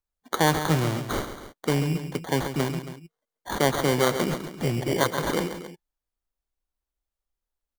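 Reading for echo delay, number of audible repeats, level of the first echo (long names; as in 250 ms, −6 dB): 137 ms, 2, −10.0 dB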